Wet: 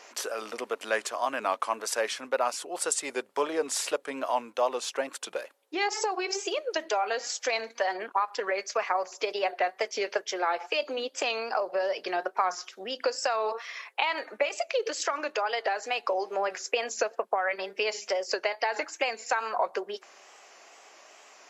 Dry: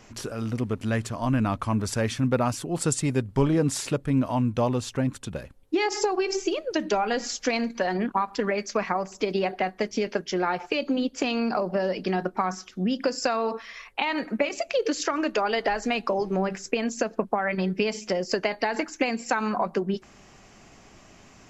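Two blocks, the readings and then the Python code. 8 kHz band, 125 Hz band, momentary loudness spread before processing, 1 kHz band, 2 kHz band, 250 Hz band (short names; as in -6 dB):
+0.5 dB, under -35 dB, 4 LU, -0.5 dB, -0.5 dB, -16.5 dB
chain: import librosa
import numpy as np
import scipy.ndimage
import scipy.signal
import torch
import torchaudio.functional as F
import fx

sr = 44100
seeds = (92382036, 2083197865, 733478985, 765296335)

y = scipy.signal.sosfilt(scipy.signal.butter(4, 470.0, 'highpass', fs=sr, output='sos'), x)
y = fx.rider(y, sr, range_db=4, speed_s=0.5)
y = fx.wow_flutter(y, sr, seeds[0], rate_hz=2.1, depth_cents=68.0)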